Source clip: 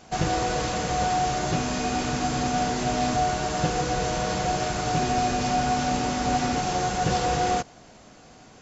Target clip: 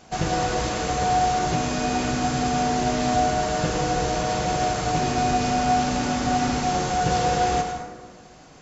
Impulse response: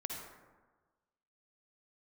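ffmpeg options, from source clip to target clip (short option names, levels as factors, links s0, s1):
-filter_complex "[0:a]asplit=2[s0][s1];[1:a]atrim=start_sample=2205,adelay=106[s2];[s1][s2]afir=irnorm=-1:irlink=0,volume=0.631[s3];[s0][s3]amix=inputs=2:normalize=0"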